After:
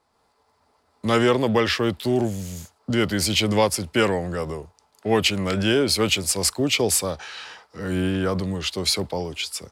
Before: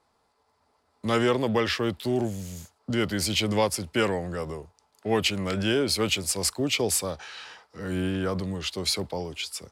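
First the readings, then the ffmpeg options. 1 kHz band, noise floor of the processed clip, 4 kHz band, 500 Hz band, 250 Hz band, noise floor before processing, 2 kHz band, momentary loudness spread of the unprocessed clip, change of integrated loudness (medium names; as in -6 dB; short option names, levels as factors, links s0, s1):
+4.5 dB, -66 dBFS, +4.5 dB, +4.5 dB, +4.5 dB, -70 dBFS, +4.5 dB, 13 LU, +4.5 dB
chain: -af "dynaudnorm=f=100:g=3:m=1.68"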